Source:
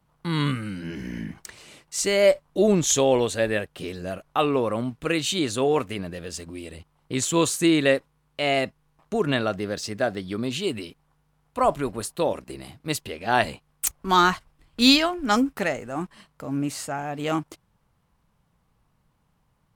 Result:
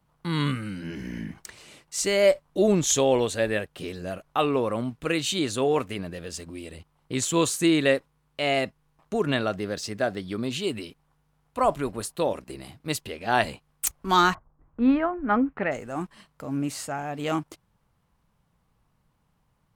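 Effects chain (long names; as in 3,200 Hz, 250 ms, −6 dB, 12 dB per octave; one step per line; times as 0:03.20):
0:14.33–0:15.71: low-pass filter 1,100 Hz → 2,500 Hz 24 dB per octave
level −1.5 dB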